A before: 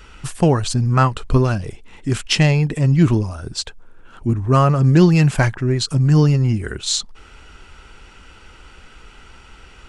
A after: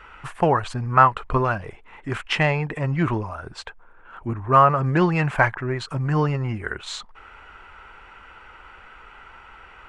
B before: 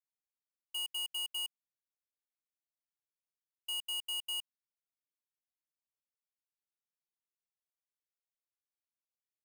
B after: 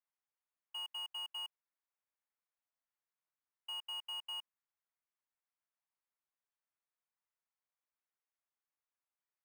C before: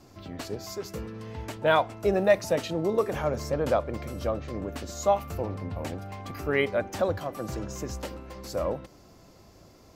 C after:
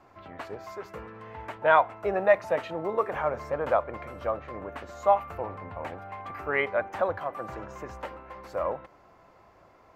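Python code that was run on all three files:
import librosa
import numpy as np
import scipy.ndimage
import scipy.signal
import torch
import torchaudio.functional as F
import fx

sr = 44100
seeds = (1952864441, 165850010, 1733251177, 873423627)

y = fx.curve_eq(x, sr, hz=(260.0, 980.0, 2100.0, 5100.0), db=(0, 15, 11, -7))
y = F.gain(torch.from_numpy(y), -9.5).numpy()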